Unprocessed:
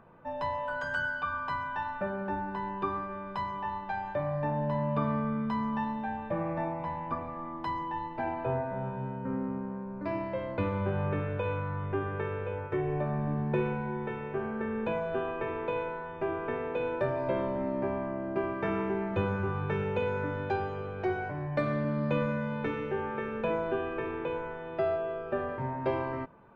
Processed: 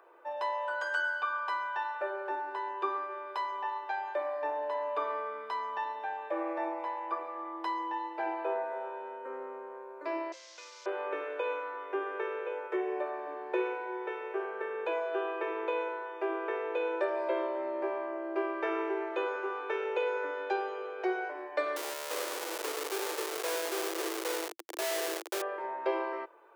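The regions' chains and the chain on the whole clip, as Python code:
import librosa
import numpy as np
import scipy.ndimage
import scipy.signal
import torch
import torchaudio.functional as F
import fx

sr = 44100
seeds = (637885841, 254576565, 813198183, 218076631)

y = fx.chain(x, sr, fx.delta_mod(bps=32000, step_db=-39.0),
    fx.differentiator(), at=(10.32, 10.86))
y = fx.chain(y, sr, fx.highpass(hz=120.0, slope=12),
    fx.schmitt(flips_db=-33.0), at=(21.76, 25.42))
y = scipy.signal.sosfilt(scipy.signal.cheby1(6, 1.0, 330.0, 'highpass', fs=sr, output='sos'), y)
y = fx.high_shelf(y, sr, hz=4600.0, db=8.0)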